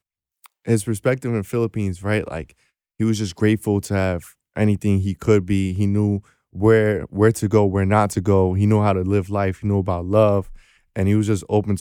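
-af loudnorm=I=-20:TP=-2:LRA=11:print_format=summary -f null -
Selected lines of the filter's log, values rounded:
Input Integrated:    -20.1 LUFS
Input True Peak:      -2.4 dBTP
Input LRA:             3.7 LU
Input Threshold:     -30.6 LUFS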